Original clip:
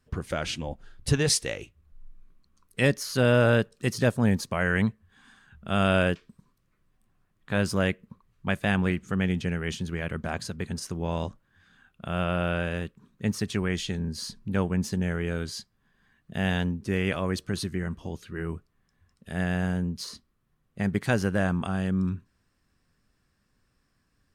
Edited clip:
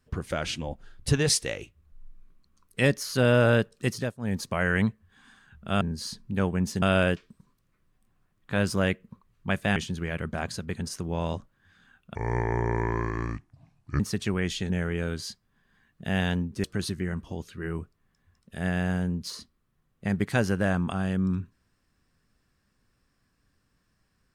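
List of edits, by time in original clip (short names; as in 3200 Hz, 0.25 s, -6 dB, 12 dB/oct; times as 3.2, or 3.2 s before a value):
3.87–4.46 dip -19 dB, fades 0.29 s
8.75–9.67 cut
12.06–13.28 speed 66%
13.98–14.99 move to 5.81
16.93–17.38 cut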